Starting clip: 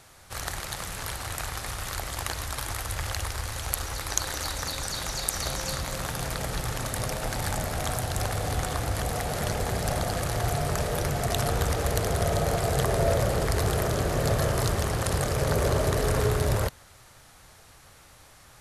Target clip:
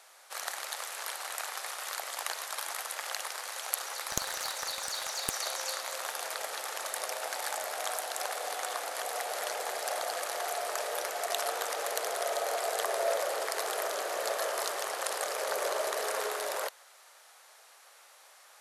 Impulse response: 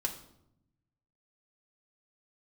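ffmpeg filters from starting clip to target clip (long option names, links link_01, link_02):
-filter_complex "[0:a]highpass=frequency=520:width=0.5412,highpass=frequency=520:width=1.3066,asettb=1/sr,asplit=3[link_01][link_02][link_03];[link_01]atrim=end=4.094[link_04];[link_02]atrim=start=4.09:end=5.34,asetpts=PTS-STARTPTS,afade=type=in:duration=0.004:curve=qsin,afade=type=out:start_time=1.246:duration=0.004:curve=qsin,aeval=exprs='clip(val(0),-1,0.0501)':channel_layout=same[link_05];[link_03]atrim=start=5.336[link_06];[link_04][link_05]acrossfade=duration=0.004:curve1=hsin:curve2=qsin[link_07];[link_07][link_06]acrossfade=duration=0.004:curve1=qsin:curve2=hsin,volume=-2.5dB"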